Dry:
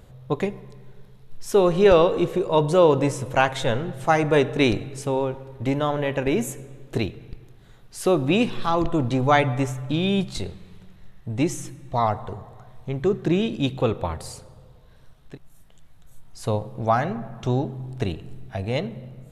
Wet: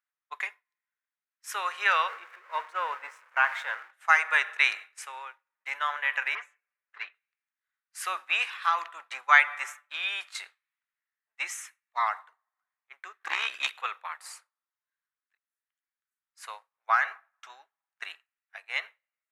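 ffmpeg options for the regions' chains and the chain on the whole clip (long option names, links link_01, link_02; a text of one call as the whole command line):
ffmpeg -i in.wav -filter_complex "[0:a]asettb=1/sr,asplit=3[link_01][link_02][link_03];[link_01]atrim=end=2.084[link_04];[link_02]atrim=start=2.08:end=3.91,asetpts=PTS-STARTPTS,afade=type=in:duration=0.004:curve=qsin,afade=type=out:start_time=1.826:duration=0.004:curve=qsin,aeval=exprs='val(0)+0.5*0.0447*sgn(val(0))':channel_layout=same,lowpass=frequency=1000:poles=1[link_05];[link_03]atrim=start=3.906[link_06];[link_04][link_05]acrossfade=duration=0.004:curve1=hsin:curve2=qsin[link_07];[link_07][link_06]acrossfade=duration=0.004:curve1=qsin:curve2=hsin,asettb=1/sr,asplit=3[link_08][link_09][link_10];[link_08]atrim=end=6.354[link_11];[link_09]atrim=start=6.35:end=7.15,asetpts=PTS-STARTPTS,afade=type=in:duration=0.004:curve=qsin,afade=type=out:start_time=0.796:duration=0.004:curve=qsin,asoftclip=type=hard:threshold=-20.5dB,highpass=340,lowpass=2500,aecho=1:1:6.8:0.48,atrim=end_sample=35280[link_12];[link_10]atrim=start=7.146[link_13];[link_11][link_12]acrossfade=duration=0.004:curve1=hsin:curve2=qsin[link_14];[link_14][link_13]acrossfade=duration=0.004:curve1=qsin:curve2=hsin,asettb=1/sr,asplit=3[link_15][link_16][link_17];[link_15]atrim=end=13.204[link_18];[link_16]atrim=start=13.2:end=13.72,asetpts=PTS-STARTPTS,afade=type=in:duration=0.004:curve=qsin,afade=type=out:start_time=0.516:duration=0.004:curve=qsin,tremolo=f=67:d=0.71,aeval=exprs='0.299*sin(PI/2*2*val(0)/0.299)':channel_layout=same[link_19];[link_17]atrim=start=13.716[link_20];[link_18][link_19]acrossfade=duration=0.004:curve1=hsin:curve2=qsin[link_21];[link_21][link_20]acrossfade=duration=0.004:curve1=qsin:curve2=hsin,highpass=frequency=1300:width=0.5412,highpass=frequency=1300:width=1.3066,agate=range=-33dB:threshold=-37dB:ratio=3:detection=peak,highshelf=frequency=2700:width_type=q:width=1.5:gain=-8,volume=5.5dB" out.wav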